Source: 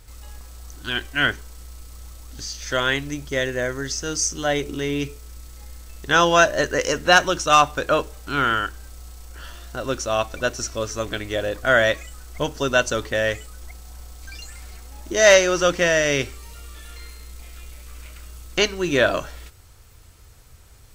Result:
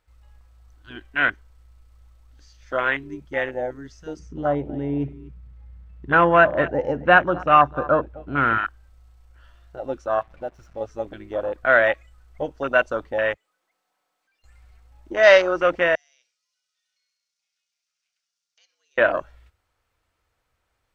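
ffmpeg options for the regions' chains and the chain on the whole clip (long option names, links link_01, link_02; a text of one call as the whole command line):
ffmpeg -i in.wav -filter_complex "[0:a]asettb=1/sr,asplit=3[link_01][link_02][link_03];[link_01]atrim=end=4.194[link_04];[link_02]atrim=start=4.19:end=8.58,asetpts=PTS-STARTPTS,afade=type=in:duration=0.004:curve=qsin,afade=type=out:start_time=4.386:duration=0.004:curve=qsin,highpass=77,bass=frequency=250:gain=14,treble=frequency=4000:gain=-13,aecho=1:1:246:0.133,atrim=end_sample=193599[link_05];[link_03]atrim=start=8.576[link_06];[link_04][link_05]acrossfade=duration=0.004:curve1=hsin:curve2=qsin[link_07];[link_07][link_06]acrossfade=duration=0.004:curve1=qsin:curve2=hsin,asettb=1/sr,asplit=3[link_08][link_09][link_10];[link_08]atrim=end=10.194[link_11];[link_09]atrim=start=10.19:end=10.81,asetpts=PTS-STARTPTS,afade=type=in:duration=0.004:curve=qsin,afade=type=out:start_time=0.616:duration=0.004:curve=qsin,highshelf=frequency=3000:gain=-10,acompressor=threshold=-30dB:ratio=1.5:attack=3.2:release=140:knee=1:detection=peak,acrusher=bits=5:mix=0:aa=0.5[link_12];[link_10]atrim=start=10.806[link_13];[link_11][link_12]acrossfade=duration=0.004:curve1=hsin:curve2=qsin[link_14];[link_14][link_13]acrossfade=duration=0.004:curve1=qsin:curve2=hsin,asettb=1/sr,asplit=3[link_15][link_16][link_17];[link_15]atrim=end=13.344[link_18];[link_16]atrim=start=13.34:end=14.44,asetpts=PTS-STARTPTS,afade=type=in:duration=0.004:curve=qsin,afade=type=out:start_time=1.096:duration=0.004:curve=qsin,highpass=frequency=150:width=0.5412,highpass=frequency=150:width=1.3066,lowshelf=frequency=230:gain=-10,aeval=exprs='(tanh(447*val(0)+0.15)-tanh(0.15))/447':channel_layout=same[link_19];[link_17]atrim=start=14.436[link_20];[link_18][link_19]acrossfade=duration=0.004:curve1=hsin:curve2=qsin[link_21];[link_21][link_20]acrossfade=duration=0.004:curve1=qsin:curve2=hsin,asettb=1/sr,asplit=3[link_22][link_23][link_24];[link_22]atrim=end=15.954[link_25];[link_23]atrim=start=15.95:end=18.98,asetpts=PTS-STARTPTS,afade=type=in:duration=0.004:curve=qsin,afade=type=out:start_time=3.026:duration=0.004:curve=qsin,acompressor=threshold=-23dB:ratio=3:attack=3.2:release=140:knee=1:detection=peak,bandpass=frequency=5500:width_type=q:width=3.5,afreqshift=100[link_26];[link_24]atrim=start=18.976[link_27];[link_25][link_26]acrossfade=duration=0.004:curve1=hsin:curve2=qsin[link_28];[link_28][link_27]acrossfade=duration=0.004:curve1=qsin:curve2=hsin,equalizer=frequency=410:width_type=o:width=0.21:gain=-7.5,afwtdn=0.0631,bass=frequency=250:gain=-13,treble=frequency=4000:gain=-14,volume=1.5dB" out.wav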